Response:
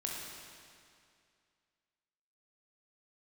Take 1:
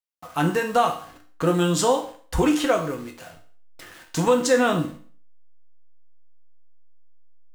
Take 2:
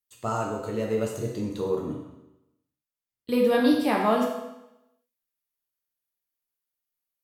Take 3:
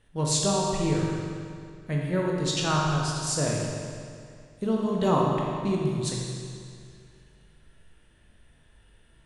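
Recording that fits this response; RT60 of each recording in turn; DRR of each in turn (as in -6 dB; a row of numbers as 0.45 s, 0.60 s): 3; 0.45 s, 0.90 s, 2.3 s; 2.5 dB, -2.0 dB, -2.5 dB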